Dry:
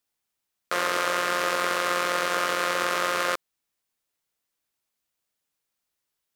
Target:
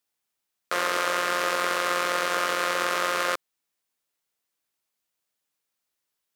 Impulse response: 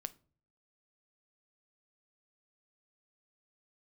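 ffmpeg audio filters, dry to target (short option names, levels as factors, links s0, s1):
-af "lowshelf=f=130:g=-7"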